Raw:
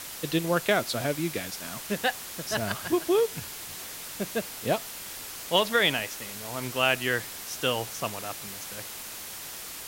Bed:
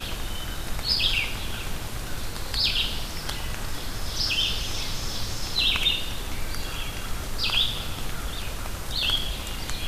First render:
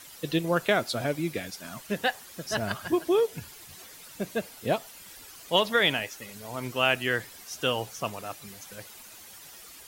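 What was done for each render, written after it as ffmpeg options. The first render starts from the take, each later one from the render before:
-af "afftdn=nr=11:nf=-40"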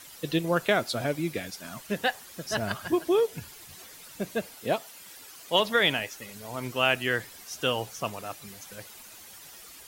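-filter_complex "[0:a]asettb=1/sr,asplit=3[a][b][c];[a]atrim=end=4.544[d];[b]atrim=start=4.54:end=5.6,asetpts=PTS-STARTPTS,afade=t=in:d=0.004:c=qsin,afade=t=out:st=1.056:d=0.004:c=qsin,highpass=f=190:p=1[e];[c]atrim=start=5.596[f];[d][e]acrossfade=d=0.004:c1=hsin:c2=qsin[g];[g][f]acrossfade=d=0.004:c1=qsin:c2=hsin"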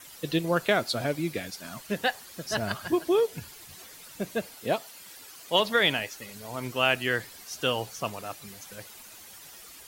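-af "adynamicequalizer=threshold=0.002:dfrequency=4400:dqfactor=7.8:tfrequency=4400:tqfactor=7.8:attack=5:release=100:ratio=0.375:range=2.5:mode=boostabove:tftype=bell"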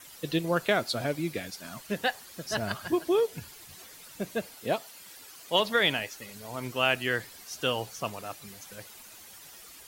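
-af "volume=-1.5dB"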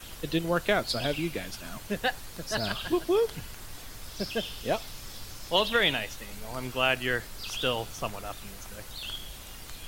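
-filter_complex "[1:a]volume=-13.5dB[a];[0:a][a]amix=inputs=2:normalize=0"

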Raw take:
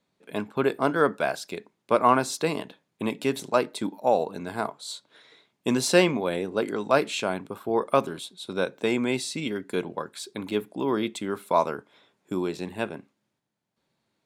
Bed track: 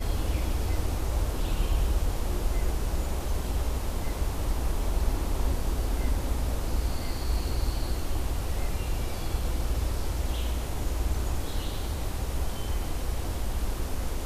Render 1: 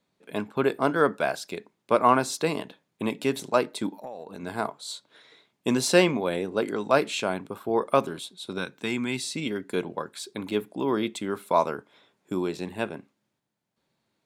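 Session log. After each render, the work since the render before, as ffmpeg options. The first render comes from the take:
-filter_complex "[0:a]asettb=1/sr,asplit=3[a][b][c];[a]atrim=end=3.914[d];[b]atrim=start=3.91:end=4.43,asetpts=PTS-STARTPTS,afade=t=in:d=0.004:c=qsin,afade=t=out:st=0.516:d=0.004:c=qsin,acompressor=threshold=-34dB:ratio=10:attack=3.2:release=140:knee=1:detection=peak[e];[c]atrim=start=4.426[f];[d][e]acrossfade=d=0.004:c1=hsin:c2=qsin[g];[g][f]acrossfade=d=0.004:c1=qsin:c2=hsin,asettb=1/sr,asplit=3[h][i][j];[h]atrim=end=8.584[k];[i]atrim=start=8.58:end=9.23,asetpts=PTS-STARTPTS,afade=t=in:d=0.004:c=qsin,afade=t=out:st=0.646:d=0.004:c=qsin,equalizer=f=550:w=1.3:g=-13[l];[j]atrim=start=9.226[m];[k][l]acrossfade=d=0.004:c1=hsin:c2=qsin[n];[n][m]acrossfade=d=0.004:c1=qsin:c2=hsin"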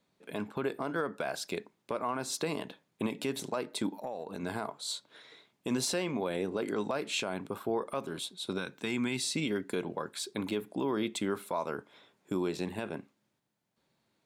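-af "acompressor=threshold=-26dB:ratio=6,alimiter=limit=-22dB:level=0:latency=1:release=37"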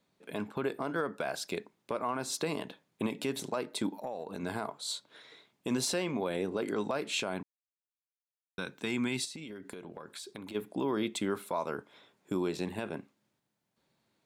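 -filter_complex "[0:a]asplit=3[a][b][c];[a]afade=t=out:st=9.24:d=0.02[d];[b]acompressor=threshold=-40dB:ratio=10:attack=3.2:release=140:knee=1:detection=peak,afade=t=in:st=9.24:d=0.02,afade=t=out:st=10.54:d=0.02[e];[c]afade=t=in:st=10.54:d=0.02[f];[d][e][f]amix=inputs=3:normalize=0,asplit=3[g][h][i];[g]atrim=end=7.43,asetpts=PTS-STARTPTS,afade=t=out:st=7.426:d=0.004:c=hsin[j];[h]atrim=start=7.43:end=8.58,asetpts=PTS-STARTPTS,volume=0[k];[i]atrim=start=8.58,asetpts=PTS-STARTPTS,afade=t=in:d=0.004:c=hsin[l];[j][k][l]concat=n=3:v=0:a=1"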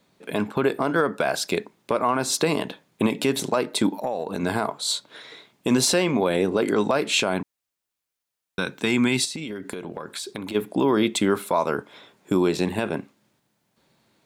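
-af "volume=11.5dB"

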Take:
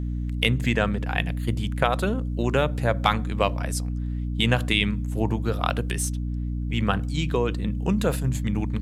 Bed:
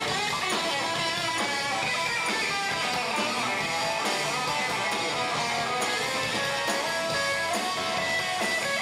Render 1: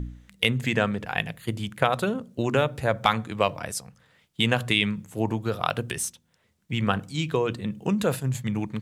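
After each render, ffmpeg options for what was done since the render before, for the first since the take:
-af "bandreject=f=60:t=h:w=4,bandreject=f=120:t=h:w=4,bandreject=f=180:t=h:w=4,bandreject=f=240:t=h:w=4,bandreject=f=300:t=h:w=4"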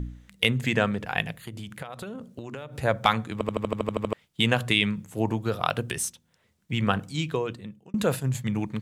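-filter_complex "[0:a]asettb=1/sr,asplit=3[a][b][c];[a]atrim=end=1.464[d];[b]atrim=start=1.46:end=2.78,asetpts=PTS-STARTPTS,afade=t=in:d=0.004:c=qsin,afade=t=out:st=1.316:d=0.004:c=qsin,acompressor=threshold=-33dB:ratio=10:attack=3.2:release=140:knee=1:detection=peak[e];[c]atrim=start=2.776[f];[d][e]acrossfade=d=0.004:c1=hsin:c2=qsin[g];[g][f]acrossfade=d=0.004:c1=qsin:c2=hsin,asplit=12[h][i][j][k][l][m][n][o][p][q][r][s];[h]atrim=end=3.412[t];[i]atrim=start=3.328:end=3.412[u];[j]atrim=start=3.328:end=3.412[v];[k]atrim=start=3.328:end=3.412[w];[l]atrim=start=3.328:end=3.412[x];[m]atrim=start=3.328:end=3.412[y];[n]atrim=start=3.328:end=3.412[z];[o]atrim=start=3.328:end=3.412[aa];[p]atrim=start=3.328:end=3.412[ab];[q]atrim=start=3.328:end=3.412[ac];[r]atrim=start=4.128:end=7.94,asetpts=PTS-STARTPTS,afade=t=out:st=2.992:d=0.82[ad];[s]atrim=start=7.94,asetpts=PTS-STARTPTS,afade=t=in:d=0.004:c=hsin[ae];[t][u]acrossfade=d=0.004:c1=hsin:c2=hsin[af];[af][v]acrossfade=d=0.004:c1=hsin:c2=hsin[ag];[ag][w]acrossfade=d=0.004:c1=hsin:c2=hsin[ah];[ah][x]acrossfade=d=0.004:c1=hsin:c2=hsin[ai];[ai][y]acrossfade=d=0.004:c1=hsin:c2=hsin[aj];[aj][z]acrossfade=d=0.004:c1=hsin:c2=hsin[ak];[ak][aa]acrossfade=d=0.004:c1=hsin:c2=hsin[al];[al][ab]acrossfade=d=0.004:c1=hsin:c2=hsin[am];[am][ac]acrossfade=d=0.004:c1=hsin:c2=hsin[an];[ad][ae]concat=n=2:v=0:a=1[ao];[an][ao]acrossfade=d=0.004:c1=hsin:c2=hsin"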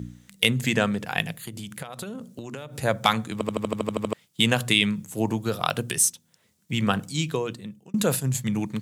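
-af "highpass=140,bass=f=250:g=5,treble=f=4k:g=10"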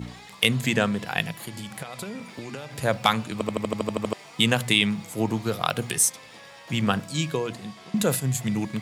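-filter_complex "[1:a]volume=-18.5dB[a];[0:a][a]amix=inputs=2:normalize=0"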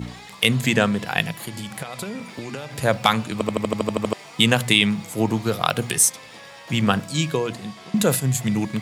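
-af "volume=4dB,alimiter=limit=-1dB:level=0:latency=1"

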